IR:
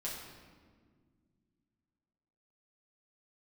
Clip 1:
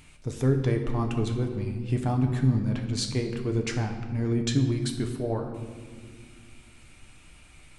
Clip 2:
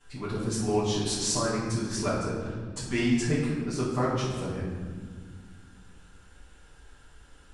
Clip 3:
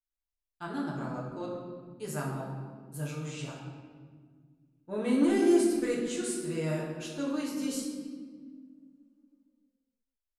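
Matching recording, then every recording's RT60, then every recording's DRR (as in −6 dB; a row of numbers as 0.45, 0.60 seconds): 3; 1.8, 1.8, 1.8 seconds; 3.5, −14.0, −5.5 decibels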